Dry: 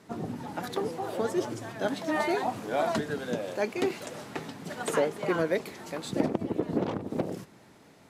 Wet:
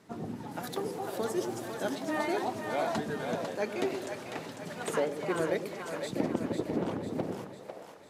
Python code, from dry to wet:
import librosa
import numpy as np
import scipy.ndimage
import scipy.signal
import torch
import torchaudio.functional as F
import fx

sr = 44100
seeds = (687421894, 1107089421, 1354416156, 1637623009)

y = fx.high_shelf(x, sr, hz=7500.0, db=9.5, at=(0.51, 1.95))
y = fx.echo_split(y, sr, split_hz=480.0, low_ms=102, high_ms=499, feedback_pct=52, wet_db=-6)
y = y * 10.0 ** (-4.0 / 20.0)